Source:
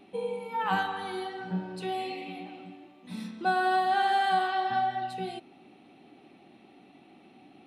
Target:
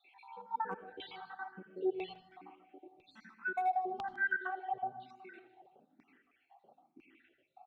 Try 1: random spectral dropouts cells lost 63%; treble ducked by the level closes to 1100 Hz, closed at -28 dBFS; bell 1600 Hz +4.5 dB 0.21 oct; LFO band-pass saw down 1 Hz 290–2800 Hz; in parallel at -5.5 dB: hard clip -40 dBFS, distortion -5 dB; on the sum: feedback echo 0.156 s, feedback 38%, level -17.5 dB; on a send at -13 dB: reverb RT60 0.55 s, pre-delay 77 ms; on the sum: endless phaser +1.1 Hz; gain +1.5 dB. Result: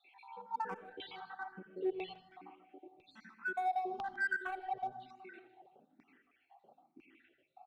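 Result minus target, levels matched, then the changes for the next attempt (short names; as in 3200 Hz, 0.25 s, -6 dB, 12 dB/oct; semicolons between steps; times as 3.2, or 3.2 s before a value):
hard clip: distortion +11 dB
change: hard clip -29 dBFS, distortion -16 dB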